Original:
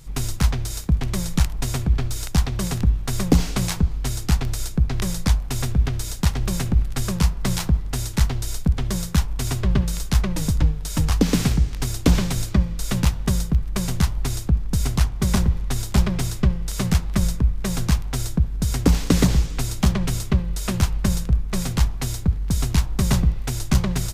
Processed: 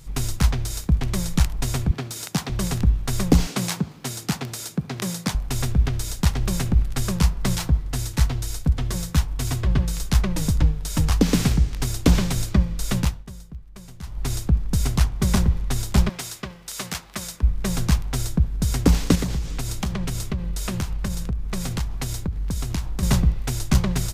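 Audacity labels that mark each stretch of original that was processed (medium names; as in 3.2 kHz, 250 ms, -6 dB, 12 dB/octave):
1.910000	2.500000	high-pass 140 Hz 24 dB/octave
3.470000	5.350000	high-pass 140 Hz 24 dB/octave
7.550000	10.000000	comb of notches 200 Hz
12.960000	14.320000	dip -18 dB, fades 0.29 s
16.090000	17.430000	high-pass 900 Hz 6 dB/octave
19.150000	23.030000	compression 4:1, threshold -22 dBFS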